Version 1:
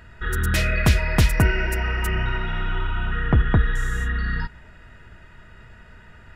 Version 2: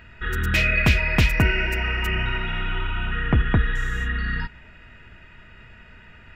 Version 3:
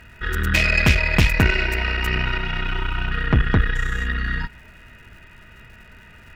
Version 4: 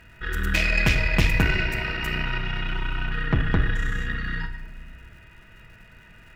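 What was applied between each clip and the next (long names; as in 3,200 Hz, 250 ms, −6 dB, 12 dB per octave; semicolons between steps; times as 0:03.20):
graphic EQ with 15 bands 250 Hz +3 dB, 2,500 Hz +10 dB, 10,000 Hz −10 dB; level −2 dB
surface crackle 290 per second −47 dBFS; harmonic generator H 6 −18 dB, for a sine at −4 dBFS; level +1.5 dB
convolution reverb RT60 1.2 s, pre-delay 6 ms, DRR 6.5 dB; level −5 dB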